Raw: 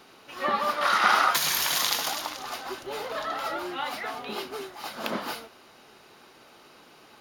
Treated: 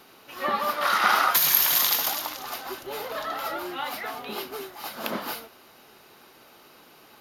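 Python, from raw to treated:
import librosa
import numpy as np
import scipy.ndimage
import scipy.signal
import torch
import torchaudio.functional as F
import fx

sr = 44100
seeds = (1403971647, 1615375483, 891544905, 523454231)

y = fx.peak_eq(x, sr, hz=13000.0, db=15.0, octaves=0.3)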